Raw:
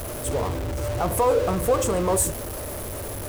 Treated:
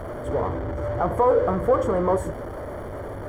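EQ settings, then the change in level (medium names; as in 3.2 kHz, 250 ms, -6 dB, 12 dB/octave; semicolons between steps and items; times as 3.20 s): Savitzky-Golay filter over 41 samples; bass shelf 150 Hz -5 dB; +2.0 dB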